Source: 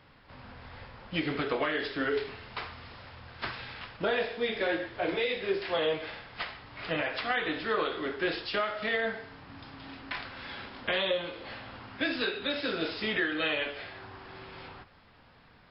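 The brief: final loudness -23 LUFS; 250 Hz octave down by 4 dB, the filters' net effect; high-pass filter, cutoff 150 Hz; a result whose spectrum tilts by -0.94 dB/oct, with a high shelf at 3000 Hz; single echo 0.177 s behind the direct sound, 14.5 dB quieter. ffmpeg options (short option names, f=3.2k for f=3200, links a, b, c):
-af "highpass=150,equalizer=f=250:t=o:g=-5,highshelf=f=3k:g=-4,aecho=1:1:177:0.188,volume=10.5dB"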